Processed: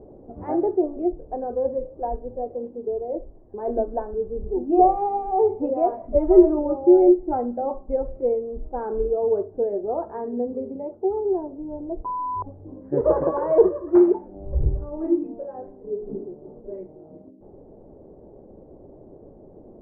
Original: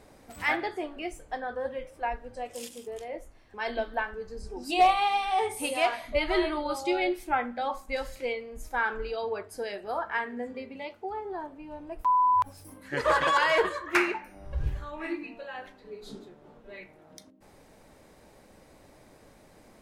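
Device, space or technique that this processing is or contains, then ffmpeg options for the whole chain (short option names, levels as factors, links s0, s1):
under water: -af "lowpass=f=670:w=0.5412,lowpass=f=670:w=1.3066,equalizer=f=380:t=o:w=0.43:g=8,volume=2.66"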